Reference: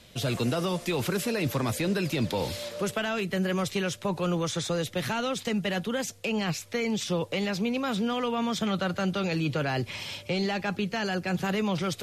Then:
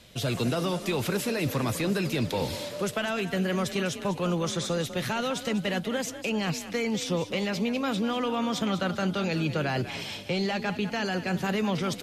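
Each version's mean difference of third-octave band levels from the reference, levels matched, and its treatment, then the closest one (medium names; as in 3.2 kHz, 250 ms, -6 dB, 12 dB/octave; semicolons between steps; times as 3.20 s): 2.0 dB: frequency-shifting echo 198 ms, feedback 44%, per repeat +35 Hz, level -12.5 dB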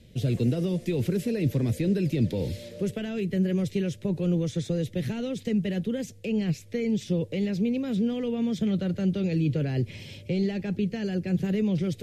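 8.0 dB: FFT filter 130 Hz 0 dB, 470 Hz -5 dB, 820 Hz -21 dB, 1.2 kHz -26 dB, 1.9 kHz -13 dB, 4.4 kHz -15 dB; trim +5.5 dB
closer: first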